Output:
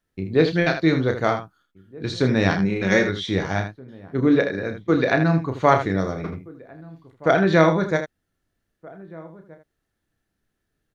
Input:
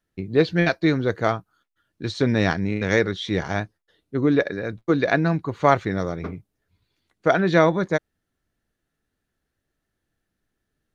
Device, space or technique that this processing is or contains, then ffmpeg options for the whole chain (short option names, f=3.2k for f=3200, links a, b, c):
slapback doubling: -filter_complex "[0:a]asettb=1/sr,asplit=3[a][b][c];[a]atrim=end=2.564[d];[b]atrim=start=2.56:end=3.09,asetpts=PTS-STARTPTS,afade=t=in:d=0.004:c=qsin,afade=t=out:st=0.526:d=0.004:c=qsin,aecho=1:1:5.4:0.53,atrim=end_sample=23373[e];[c]atrim=start=3.086[f];[d][e]acrossfade=d=0.004:c1=hsin:c2=qsin[g];[g][f]acrossfade=d=0.004:c1=qsin:c2=hsin,asplit=3[h][i][j];[i]adelay=31,volume=-7dB[k];[j]adelay=79,volume=-9.5dB[l];[h][k][l]amix=inputs=3:normalize=0,asplit=2[m][n];[n]adelay=1574,volume=-22dB,highshelf=f=4k:g=-35.4[o];[m][o]amix=inputs=2:normalize=0"